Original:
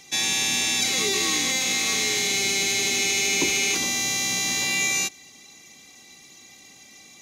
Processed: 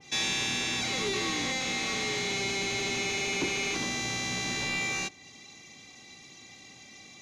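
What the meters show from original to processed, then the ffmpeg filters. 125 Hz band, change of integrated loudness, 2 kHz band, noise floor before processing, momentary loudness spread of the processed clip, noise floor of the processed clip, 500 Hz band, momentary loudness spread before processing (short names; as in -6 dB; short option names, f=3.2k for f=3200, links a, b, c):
+0.5 dB, -8.0 dB, -6.0 dB, -49 dBFS, 20 LU, -52 dBFS, -3.0 dB, 2 LU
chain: -af "equalizer=f=110:t=o:w=0.78:g=6,asoftclip=type=hard:threshold=-23.5dB,lowpass=5.4k,adynamicequalizer=threshold=0.00794:dfrequency=2000:dqfactor=0.7:tfrequency=2000:tqfactor=0.7:attack=5:release=100:ratio=0.375:range=2.5:mode=cutabove:tftype=highshelf"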